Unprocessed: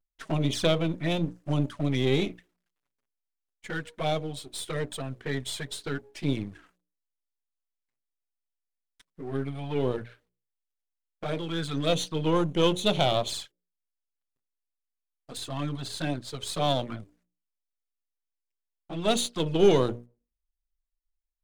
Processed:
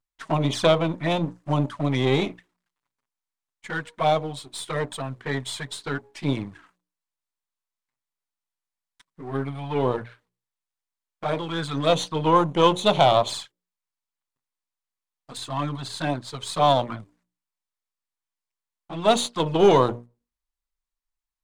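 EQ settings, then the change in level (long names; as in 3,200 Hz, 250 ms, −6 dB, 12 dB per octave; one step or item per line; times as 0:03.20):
dynamic equaliser 640 Hz, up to +7 dB, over −39 dBFS, Q 0.73
octave-band graphic EQ 125/250/1,000/2,000/4,000/8,000 Hz +7/+4/+12/+5/+5/+6 dB
−5.0 dB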